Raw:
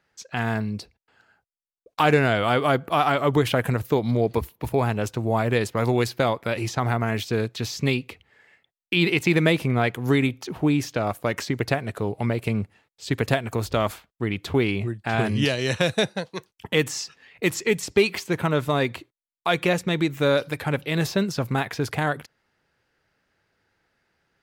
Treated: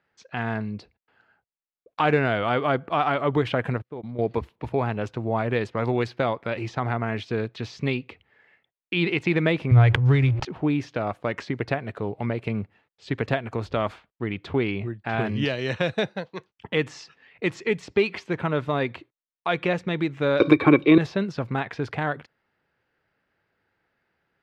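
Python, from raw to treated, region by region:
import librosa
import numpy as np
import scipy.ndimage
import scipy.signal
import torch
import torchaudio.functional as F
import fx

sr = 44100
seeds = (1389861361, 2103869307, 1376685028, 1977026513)

y = fx.chain(x, sr, fx.high_shelf(hz=3000.0, db=-10.5),
    fx.level_steps(step_db=15),
    fx.upward_expand(threshold_db=-42.0, expansion=2.5), at=(3.78, 4.19))
y = fx.chain(y, sr, fx.low_shelf_res(hz=150.0, db=12.0, q=3.0),
    fx.backlash(play_db=-33.0),
    fx.sustainer(db_per_s=58.0), at=(9.71, 10.45))
y = fx.chain(y, sr, fx.peak_eq(hz=370.0, db=4.5, octaves=1.8),
    fx.small_body(hz=(330.0, 1100.0, 2300.0, 3700.0), ring_ms=40, db=18),
    fx.band_squash(depth_pct=100), at=(20.4, 20.98))
y = scipy.signal.sosfilt(scipy.signal.butter(2, 3100.0, 'lowpass', fs=sr, output='sos'), y)
y = fx.low_shelf(y, sr, hz=61.0, db=-7.5)
y = y * librosa.db_to_amplitude(-2.0)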